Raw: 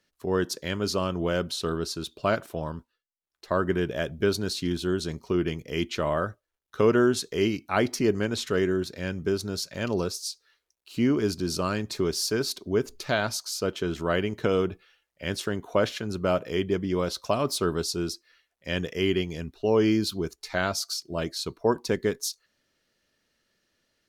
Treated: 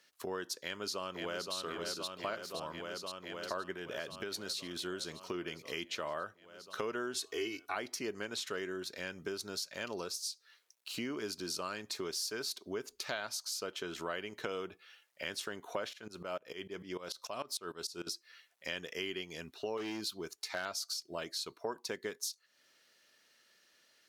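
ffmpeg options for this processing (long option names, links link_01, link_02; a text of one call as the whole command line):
ffmpeg -i in.wav -filter_complex "[0:a]asplit=2[link_01][link_02];[link_02]afade=type=in:start_time=0.6:duration=0.01,afade=type=out:start_time=1.55:duration=0.01,aecho=0:1:520|1040|1560|2080|2600|3120|3640|4160|4680|5200|5720|6240:0.530884|0.398163|0.298622|0.223967|0.167975|0.125981|0.094486|0.0708645|0.0531484|0.0398613|0.029896|0.022422[link_03];[link_01][link_03]amix=inputs=2:normalize=0,asplit=3[link_04][link_05][link_06];[link_04]afade=type=out:start_time=3.73:duration=0.02[link_07];[link_05]acompressor=threshold=-26dB:ratio=6:attack=3.2:release=140:knee=1:detection=peak,afade=type=in:start_time=3.73:duration=0.02,afade=type=out:start_time=4.75:duration=0.02[link_08];[link_06]afade=type=in:start_time=4.75:duration=0.02[link_09];[link_07][link_08][link_09]amix=inputs=3:normalize=0,asettb=1/sr,asplit=3[link_10][link_11][link_12];[link_10]atrim=end=7.144[link_13];[link_11]atrim=start=7.14:end=7.75,asetpts=PTS-STARTPTS,afade=type=in:duration=0.004:curve=qsin,afade=type=out:start_time=0.606:duration=0.004:curve=qsin,aecho=1:1:2.7:0.99,atrim=end_sample=26901[link_14];[link_12]atrim=start=7.746[link_15];[link_13][link_14]acrossfade=duration=0.004:curve1=hsin:curve2=qsin[link_16];[link_16][link_15]acrossfade=duration=0.004:curve1=qsin:curve2=hsin,asettb=1/sr,asplit=3[link_17][link_18][link_19];[link_17]atrim=end=15.934[link_20];[link_18]atrim=start=15.93:end=18.07,asetpts=PTS-STARTPTS,afade=type=in:duration=0.004:curve=qsin,afade=type=out:start_time=2.136:duration=0.004:curve=qsin,aeval=exprs='val(0)*pow(10,-20*if(lt(mod(-6.7*n/s,1),2*abs(-6.7)/1000),1-mod(-6.7*n/s,1)/(2*abs(-6.7)/1000),(mod(-6.7*n/s,1)-2*abs(-6.7)/1000)/(1-2*abs(-6.7)/1000))/20)':channel_layout=same[link_21];[link_19]atrim=start=18.066[link_22];[link_20][link_21]acrossfade=duration=0.004:curve1=hsin:curve2=qsin[link_23];[link_23][link_22]acrossfade=duration=0.004:curve1=qsin:curve2=hsin,asettb=1/sr,asplit=3[link_24][link_25][link_26];[link_24]atrim=end=19.774[link_27];[link_25]atrim=start=19.77:end=20.66,asetpts=PTS-STARTPTS,afade=type=in:duration=0.004:curve=qsin,afade=type=out:start_time=0.886:duration=0.004:curve=qsin,asoftclip=type=hard:threshold=-19dB[link_28];[link_26]atrim=start=20.656[link_29];[link_27][link_28]acrossfade=duration=0.004:curve1=hsin:curve2=qsin[link_30];[link_30][link_29]acrossfade=duration=0.004:curve1=qsin:curve2=hsin,highpass=frequency=900:poles=1,acompressor=threshold=-48dB:ratio=3,volume=7dB" out.wav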